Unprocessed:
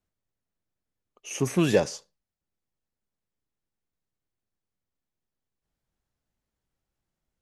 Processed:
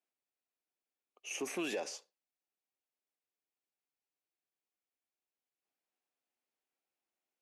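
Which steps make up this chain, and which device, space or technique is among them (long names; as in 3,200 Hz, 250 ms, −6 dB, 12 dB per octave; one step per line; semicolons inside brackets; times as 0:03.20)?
laptop speaker (high-pass filter 280 Hz 24 dB per octave; parametric band 750 Hz +5.5 dB 0.23 octaves; parametric band 2,500 Hz +7 dB 0.5 octaves; brickwall limiter −21.5 dBFS, peak gain reduction 12.5 dB)
level −7.5 dB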